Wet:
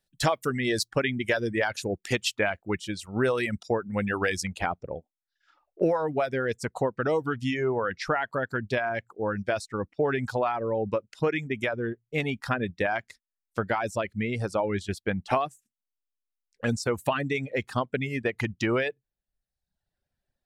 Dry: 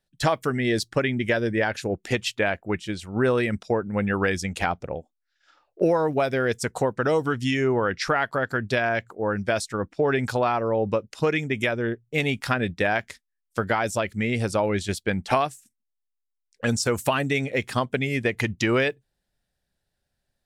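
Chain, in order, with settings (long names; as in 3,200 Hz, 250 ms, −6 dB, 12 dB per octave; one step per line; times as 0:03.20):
reverb reduction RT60 0.84 s
high-shelf EQ 3,600 Hz +5.5 dB, from 0:04.47 −8 dB
level −2.5 dB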